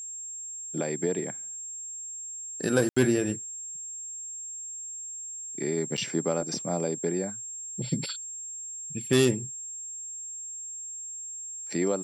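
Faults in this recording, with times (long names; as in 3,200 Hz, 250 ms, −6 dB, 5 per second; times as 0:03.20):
whistle 7,500 Hz −36 dBFS
0:02.89–0:02.96: drop-out 75 ms
0:05.97–0:05.98: drop-out 6.6 ms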